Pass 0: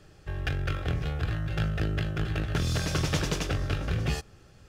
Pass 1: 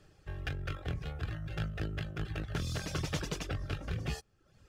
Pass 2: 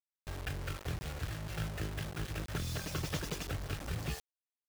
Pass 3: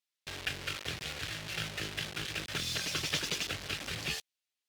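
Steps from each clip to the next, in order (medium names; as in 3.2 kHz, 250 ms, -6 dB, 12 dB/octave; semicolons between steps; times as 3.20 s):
reverb removal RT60 0.64 s; trim -6.5 dB
bit crusher 7-bit; trim -2 dB
frequency weighting D; Opus 48 kbps 48 kHz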